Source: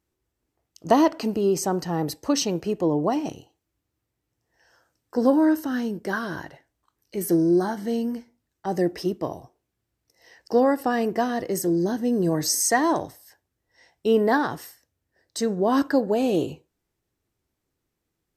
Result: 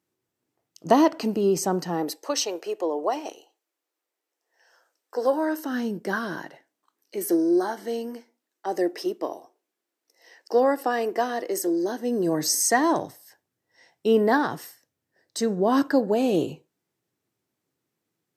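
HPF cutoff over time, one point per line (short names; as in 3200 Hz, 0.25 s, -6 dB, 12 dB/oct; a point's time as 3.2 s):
HPF 24 dB/oct
1.75 s 120 Hz
2.27 s 400 Hz
5.5 s 400 Hz
5.98 s 140 Hz
7.44 s 300 Hz
12 s 300 Hz
12.65 s 120 Hz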